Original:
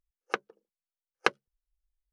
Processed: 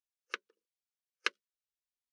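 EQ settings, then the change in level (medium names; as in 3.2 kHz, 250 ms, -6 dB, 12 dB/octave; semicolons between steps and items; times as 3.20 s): differentiator; tape spacing loss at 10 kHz 21 dB; static phaser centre 310 Hz, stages 4; +12.0 dB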